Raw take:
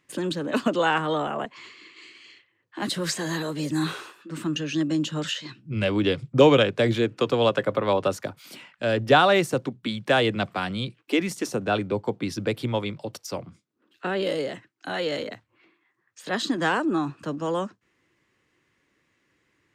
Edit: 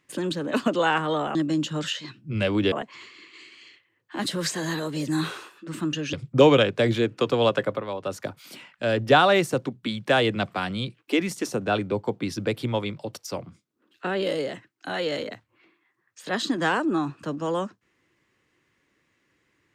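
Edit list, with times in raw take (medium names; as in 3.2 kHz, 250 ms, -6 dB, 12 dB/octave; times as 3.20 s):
4.76–6.13 s: move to 1.35 s
7.63–8.26 s: dip -9.5 dB, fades 0.24 s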